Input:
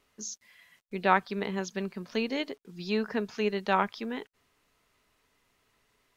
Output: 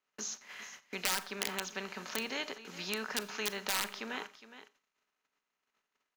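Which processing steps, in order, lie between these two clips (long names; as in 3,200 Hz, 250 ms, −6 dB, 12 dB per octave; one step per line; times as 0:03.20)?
compressor on every frequency bin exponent 0.6
noise gate −45 dBFS, range −42 dB
parametric band 4,600 Hz −3 dB 1.6 octaves
single-tap delay 412 ms −17.5 dB
wrap-around overflow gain 16.5 dB
tilt shelving filter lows −6.5 dB
four-comb reverb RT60 0.34 s, combs from 28 ms, DRR 16 dB
multiband upward and downward compressor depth 40%
level −9 dB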